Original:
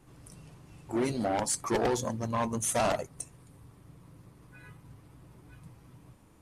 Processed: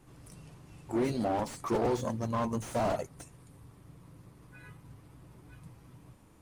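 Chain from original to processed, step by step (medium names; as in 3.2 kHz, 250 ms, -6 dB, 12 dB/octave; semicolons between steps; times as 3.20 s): slew-rate limiter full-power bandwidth 35 Hz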